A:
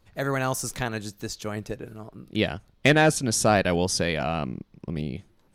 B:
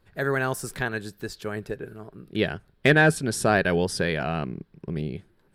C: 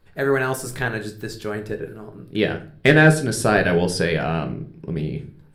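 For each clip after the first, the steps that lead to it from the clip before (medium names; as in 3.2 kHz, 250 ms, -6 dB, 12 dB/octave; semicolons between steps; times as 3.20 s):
graphic EQ with 31 bands 160 Hz +5 dB, 400 Hz +8 dB, 1.6 kHz +9 dB, 6.3 kHz -10 dB; trim -2.5 dB
simulated room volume 36 m³, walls mixed, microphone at 0.34 m; trim +2.5 dB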